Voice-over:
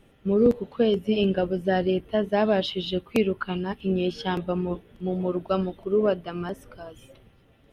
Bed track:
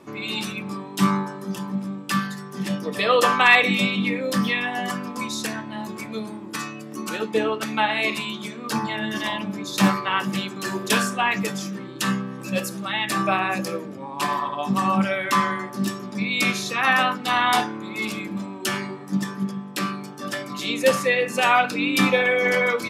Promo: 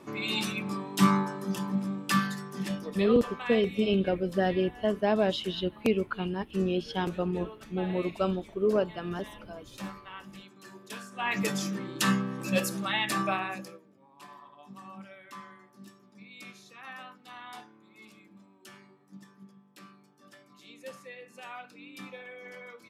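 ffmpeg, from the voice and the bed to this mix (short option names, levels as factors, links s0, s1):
-filter_complex "[0:a]adelay=2700,volume=0.668[s0];[1:a]volume=7.08,afade=t=out:st=2.3:d=0.9:silence=0.112202,afade=t=in:st=11.11:d=0.4:silence=0.105925,afade=t=out:st=12.78:d=1.02:silence=0.0668344[s1];[s0][s1]amix=inputs=2:normalize=0"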